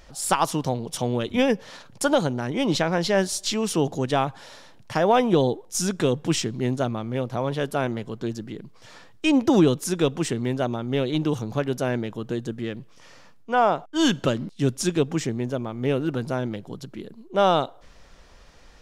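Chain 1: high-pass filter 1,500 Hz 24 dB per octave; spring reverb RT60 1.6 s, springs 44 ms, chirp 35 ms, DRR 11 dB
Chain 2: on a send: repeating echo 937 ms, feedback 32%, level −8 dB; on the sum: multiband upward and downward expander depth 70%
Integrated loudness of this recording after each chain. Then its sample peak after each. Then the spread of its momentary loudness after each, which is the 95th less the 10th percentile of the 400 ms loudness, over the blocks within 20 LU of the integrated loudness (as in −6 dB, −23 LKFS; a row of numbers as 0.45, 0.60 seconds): −33.0, −22.5 LKFS; −13.0, −1.5 dBFS; 18, 17 LU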